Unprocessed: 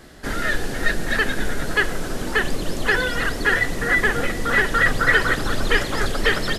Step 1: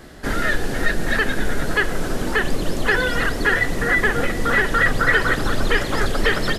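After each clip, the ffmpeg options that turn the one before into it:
-filter_complex "[0:a]lowpass=f=2k:p=1,aemphasis=mode=production:type=50kf,asplit=2[a][b];[b]alimiter=limit=-14dB:level=0:latency=1:release=220,volume=0.5dB[c];[a][c]amix=inputs=2:normalize=0,volume=-2.5dB"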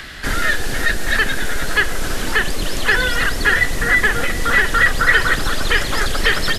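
-filter_complex "[0:a]equalizer=f=420:w=0.32:g=-9.5,acrossover=split=270|1300|3900[a][b][c][d];[a]asoftclip=type=tanh:threshold=-22.5dB[e];[c]acompressor=mode=upward:threshold=-32dB:ratio=2.5[f];[e][b][f][d]amix=inputs=4:normalize=0,volume=7.5dB"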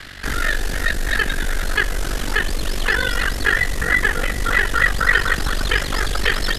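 -af "aeval=exprs='val(0)*sin(2*PI*24*n/s)':c=same"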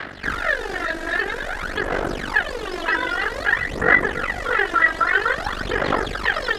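-filter_complex "[0:a]asplit=2[a][b];[b]alimiter=limit=-14dB:level=0:latency=1:release=92,volume=3dB[c];[a][c]amix=inputs=2:normalize=0,bandpass=f=740:t=q:w=0.63:csg=0,aphaser=in_gain=1:out_gain=1:delay=3.1:decay=0.65:speed=0.51:type=sinusoidal,volume=-4dB"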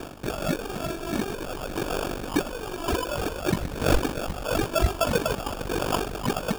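-af "acrusher=samples=22:mix=1:aa=0.000001,volume=-5dB"

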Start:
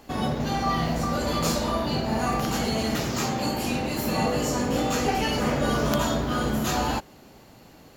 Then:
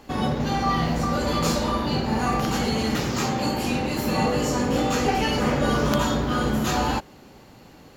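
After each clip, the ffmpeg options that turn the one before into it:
-af "highshelf=f=7.8k:g=-6.5,bandreject=f=660:w=12,volume=2.5dB"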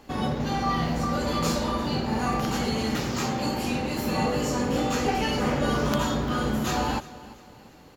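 -af "aecho=1:1:346|692|1038:0.119|0.0475|0.019,volume=-3dB"

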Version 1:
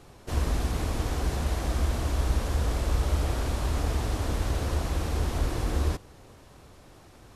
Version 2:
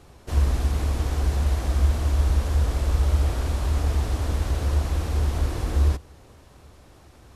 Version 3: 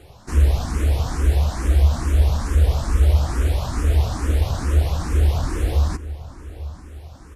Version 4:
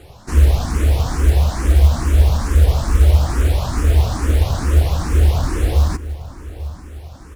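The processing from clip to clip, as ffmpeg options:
-af "equalizer=f=69:t=o:w=0.37:g=9.5"
-filter_complex "[0:a]acontrast=78,asplit=2[a][b];[b]adelay=843,lowpass=f=2k:p=1,volume=-16.5dB,asplit=2[c][d];[d]adelay=843,lowpass=f=2k:p=1,volume=0.52,asplit=2[e][f];[f]adelay=843,lowpass=f=2k:p=1,volume=0.52,asplit=2[g][h];[h]adelay=843,lowpass=f=2k:p=1,volume=0.52,asplit=2[i][j];[j]adelay=843,lowpass=f=2k:p=1,volume=0.52[k];[a][c][e][g][i][k]amix=inputs=6:normalize=0,asplit=2[l][m];[m]afreqshift=2.3[n];[l][n]amix=inputs=2:normalize=1"
-af "acrusher=bits=8:mode=log:mix=0:aa=0.000001,volume=4dB"

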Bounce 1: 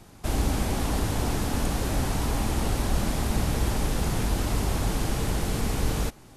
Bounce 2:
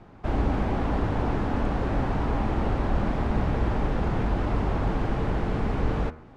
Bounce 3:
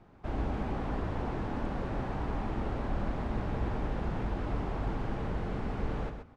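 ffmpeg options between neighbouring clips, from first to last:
-af "lowpass=1.7k,lowshelf=f=210:g=-3.5,bandreject=f=78.66:t=h:w=4,bandreject=f=157.32:t=h:w=4,bandreject=f=235.98:t=h:w=4,bandreject=f=314.64:t=h:w=4,bandreject=f=393.3:t=h:w=4,bandreject=f=471.96:t=h:w=4,bandreject=f=550.62:t=h:w=4,bandreject=f=629.28:t=h:w=4,bandreject=f=707.94:t=h:w=4,bandreject=f=786.6:t=h:w=4,bandreject=f=865.26:t=h:w=4,bandreject=f=943.92:t=h:w=4,bandreject=f=1.02258k:t=h:w=4,bandreject=f=1.10124k:t=h:w=4,bandreject=f=1.1799k:t=h:w=4,bandreject=f=1.25856k:t=h:w=4,bandreject=f=1.33722k:t=h:w=4,bandreject=f=1.41588k:t=h:w=4,bandreject=f=1.49454k:t=h:w=4,bandreject=f=1.5732k:t=h:w=4,bandreject=f=1.65186k:t=h:w=4,bandreject=f=1.73052k:t=h:w=4,bandreject=f=1.80918k:t=h:w=4,bandreject=f=1.88784k:t=h:w=4,bandreject=f=1.9665k:t=h:w=4,bandreject=f=2.04516k:t=h:w=4,bandreject=f=2.12382k:t=h:w=4,bandreject=f=2.20248k:t=h:w=4,bandreject=f=2.28114k:t=h:w=4,bandreject=f=2.3598k:t=h:w=4,bandreject=f=2.43846k:t=h:w=4,bandreject=f=2.51712k:t=h:w=4,volume=3.5dB"
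-af "aecho=1:1:128:0.422,volume=-8.5dB"

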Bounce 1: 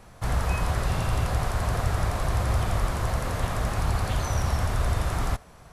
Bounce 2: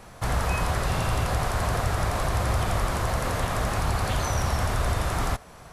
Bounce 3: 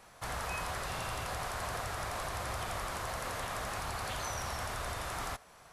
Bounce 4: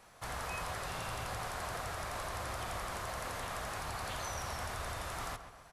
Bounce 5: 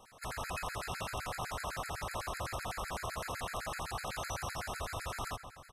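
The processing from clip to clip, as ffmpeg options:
-filter_complex "[0:a]lowshelf=f=170:g=-5,asplit=2[a][b];[b]alimiter=level_in=0.5dB:limit=-24dB:level=0:latency=1:release=216,volume=-0.5dB,volume=-1.5dB[c];[a][c]amix=inputs=2:normalize=0"
-af "lowshelf=f=420:g=-11,volume=-7dB"
-filter_complex "[0:a]asplit=2[a][b];[b]adelay=133,lowpass=f=2.8k:p=1,volume=-10dB,asplit=2[c][d];[d]adelay=133,lowpass=f=2.8k:p=1,volume=0.49,asplit=2[e][f];[f]adelay=133,lowpass=f=2.8k:p=1,volume=0.49,asplit=2[g][h];[h]adelay=133,lowpass=f=2.8k:p=1,volume=0.49,asplit=2[i][j];[j]adelay=133,lowpass=f=2.8k:p=1,volume=0.49[k];[a][c][e][g][i][k]amix=inputs=6:normalize=0,volume=-2.5dB"
-af "aecho=1:1:465:0.119,afftfilt=real='re*gt(sin(2*PI*7.9*pts/sr)*(1-2*mod(floor(b*sr/1024/1300),2)),0)':imag='im*gt(sin(2*PI*7.9*pts/sr)*(1-2*mod(floor(b*sr/1024/1300),2)),0)':win_size=1024:overlap=0.75,volume=3.5dB"

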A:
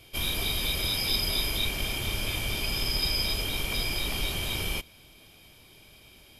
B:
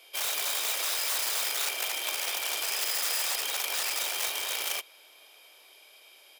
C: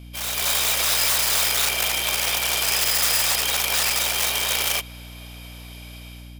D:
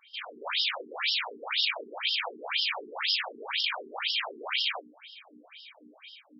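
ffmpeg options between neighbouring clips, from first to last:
-filter_complex "[0:a]aeval=exprs='(mod(15.8*val(0)+1,2)-1)/15.8':c=same,highpass=f=480:w=0.5412,highpass=f=480:w=1.3066,asplit=2[a][b];[b]adelay=932.9,volume=-27dB,highshelf=f=4k:g=-21[c];[a][c]amix=inputs=2:normalize=0"
-af "dynaudnorm=f=170:g=5:m=11dB,alimiter=limit=-11.5dB:level=0:latency=1:release=65,aeval=exprs='val(0)+0.0112*(sin(2*PI*60*n/s)+sin(2*PI*2*60*n/s)/2+sin(2*PI*3*60*n/s)/3+sin(2*PI*4*60*n/s)/4+sin(2*PI*5*60*n/s)/5)':c=same"
-af "afftfilt=real='re*between(b*sr/1024,300*pow(4000/300,0.5+0.5*sin(2*PI*2*pts/sr))/1.41,300*pow(4000/300,0.5+0.5*sin(2*PI*2*pts/sr))*1.41)':imag='im*between(b*sr/1024,300*pow(4000/300,0.5+0.5*sin(2*PI*2*pts/sr))/1.41,300*pow(4000/300,0.5+0.5*sin(2*PI*2*pts/sr))*1.41)':win_size=1024:overlap=0.75"

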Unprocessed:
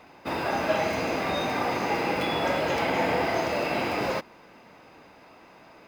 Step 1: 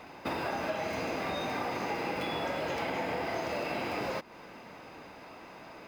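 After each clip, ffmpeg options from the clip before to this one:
-af "acompressor=threshold=-35dB:ratio=5,volume=3dB"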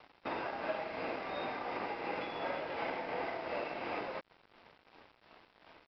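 -af "bass=f=250:g=-9,treble=f=4k:g=-12,tremolo=f=2.8:d=0.33,aresample=11025,aeval=exprs='sgn(val(0))*max(abs(val(0))-0.00316,0)':c=same,aresample=44100,volume=-1dB"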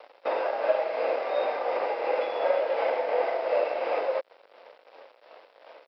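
-af "highpass=f=530:t=q:w=4.7,volume=4.5dB"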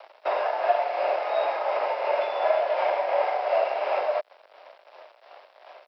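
-af "afreqshift=75,volume=2dB"

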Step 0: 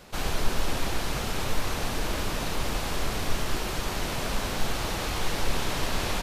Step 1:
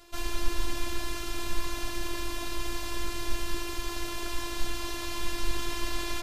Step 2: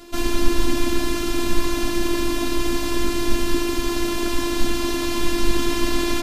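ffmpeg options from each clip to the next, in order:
-af "afftfilt=real='hypot(re,im)*cos(PI*b)':imag='0':win_size=512:overlap=0.75,bandreject=f=62.59:t=h:w=4,bandreject=f=125.18:t=h:w=4,bandreject=f=187.77:t=h:w=4,bandreject=f=250.36:t=h:w=4,bandreject=f=312.95:t=h:w=4,bandreject=f=375.54:t=h:w=4,bandreject=f=438.13:t=h:w=4,bandreject=f=500.72:t=h:w=4,bandreject=f=563.31:t=h:w=4,bandreject=f=625.9:t=h:w=4,bandreject=f=688.49:t=h:w=4,bandreject=f=751.08:t=h:w=4,bandreject=f=813.67:t=h:w=4,bandreject=f=876.26:t=h:w=4,bandreject=f=938.85:t=h:w=4,bandreject=f=1.00144k:t=h:w=4,bandreject=f=1.06403k:t=h:w=4,bandreject=f=1.12662k:t=h:w=4,bandreject=f=1.18921k:t=h:w=4,bandreject=f=1.2518k:t=h:w=4,bandreject=f=1.31439k:t=h:w=4,bandreject=f=1.37698k:t=h:w=4,bandreject=f=1.43957k:t=h:w=4,bandreject=f=1.50216k:t=h:w=4,bandreject=f=1.56475k:t=h:w=4,bandreject=f=1.62734k:t=h:w=4,bandreject=f=1.68993k:t=h:w=4,bandreject=f=1.75252k:t=h:w=4,bandreject=f=1.81511k:t=h:w=4,bandreject=f=1.8777k:t=h:w=4,bandreject=f=1.94029k:t=h:w=4,bandreject=f=2.00288k:t=h:w=4,bandreject=f=2.06547k:t=h:w=4"
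-af "equalizer=f=260:w=1.7:g=15,volume=8.5dB"

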